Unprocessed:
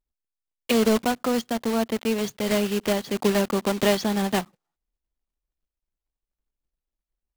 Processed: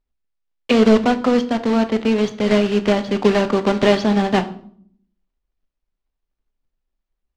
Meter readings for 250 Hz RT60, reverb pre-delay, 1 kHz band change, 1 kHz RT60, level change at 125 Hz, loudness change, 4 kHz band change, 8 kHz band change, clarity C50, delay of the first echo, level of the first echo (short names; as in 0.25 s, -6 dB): 0.95 s, 4 ms, +6.5 dB, 0.55 s, +7.0 dB, +7.0 dB, +3.5 dB, -5.0 dB, 14.5 dB, none, none